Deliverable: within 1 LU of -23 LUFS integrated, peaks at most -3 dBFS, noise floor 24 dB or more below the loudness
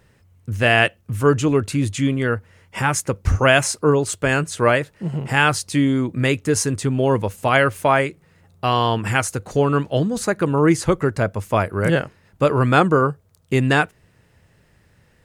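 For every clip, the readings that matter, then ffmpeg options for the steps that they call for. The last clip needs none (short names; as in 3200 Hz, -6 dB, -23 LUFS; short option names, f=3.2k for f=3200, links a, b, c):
loudness -19.5 LUFS; peak -1.5 dBFS; loudness target -23.0 LUFS
-> -af "volume=-3.5dB"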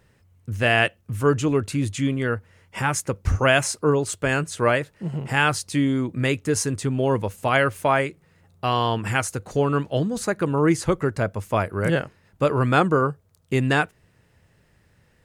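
loudness -23.0 LUFS; peak -5.0 dBFS; noise floor -61 dBFS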